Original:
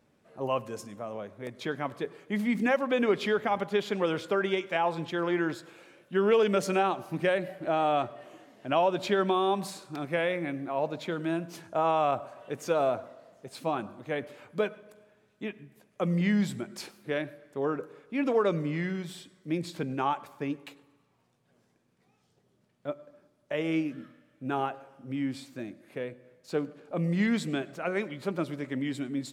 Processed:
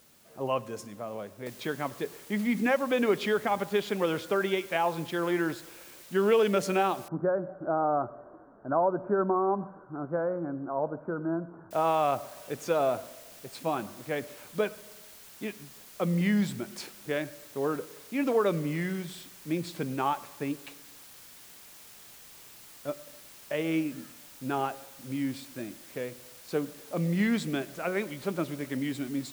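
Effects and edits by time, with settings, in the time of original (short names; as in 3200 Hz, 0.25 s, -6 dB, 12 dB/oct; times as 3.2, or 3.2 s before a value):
1.46 noise floor step -61 dB -51 dB
7.08–11.71 Chebyshev low-pass 1500 Hz, order 6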